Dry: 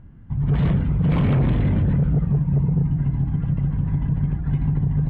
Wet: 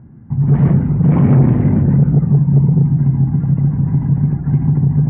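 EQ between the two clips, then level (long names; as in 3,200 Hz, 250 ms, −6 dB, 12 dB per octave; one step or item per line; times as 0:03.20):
loudspeaker in its box 120–2,200 Hz, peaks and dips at 130 Hz +5 dB, 230 Hz +6 dB, 360 Hz +5 dB, 810 Hz +5 dB
spectral tilt −1.5 dB per octave
+2.5 dB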